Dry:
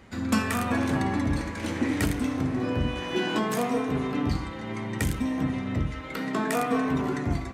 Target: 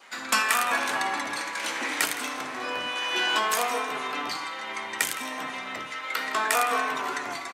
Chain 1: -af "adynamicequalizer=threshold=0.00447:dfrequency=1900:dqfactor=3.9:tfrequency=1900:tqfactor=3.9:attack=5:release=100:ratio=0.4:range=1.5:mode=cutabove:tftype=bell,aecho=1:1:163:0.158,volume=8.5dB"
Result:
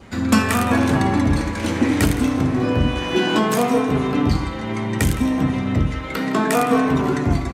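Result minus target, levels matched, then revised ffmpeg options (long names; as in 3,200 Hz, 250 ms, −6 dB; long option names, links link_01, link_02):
1,000 Hz band −4.0 dB
-af "adynamicequalizer=threshold=0.00447:dfrequency=1900:dqfactor=3.9:tfrequency=1900:tqfactor=3.9:attack=5:release=100:ratio=0.4:range=1.5:mode=cutabove:tftype=bell,highpass=1000,aecho=1:1:163:0.158,volume=8.5dB"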